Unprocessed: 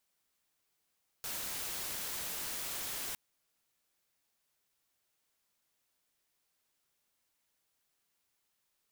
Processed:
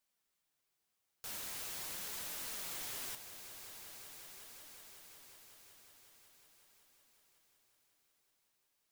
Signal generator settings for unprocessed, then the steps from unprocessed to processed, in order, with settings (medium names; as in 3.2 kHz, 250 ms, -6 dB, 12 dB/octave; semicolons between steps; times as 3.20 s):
noise white, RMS -39.5 dBFS 1.91 s
on a send: echo with a slow build-up 184 ms, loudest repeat 5, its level -16 dB; on the sum: flange 0.43 Hz, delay 3.2 ms, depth 8 ms, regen +68%